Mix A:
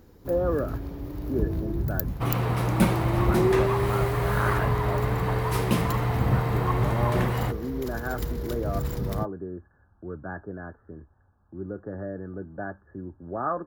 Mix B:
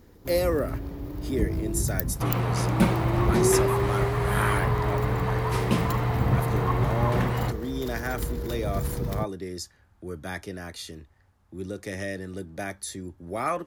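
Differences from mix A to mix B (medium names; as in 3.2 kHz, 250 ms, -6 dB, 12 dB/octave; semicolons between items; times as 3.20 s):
speech: remove Chebyshev low-pass 1.7 kHz, order 10; second sound: add Bessel low-pass 8.7 kHz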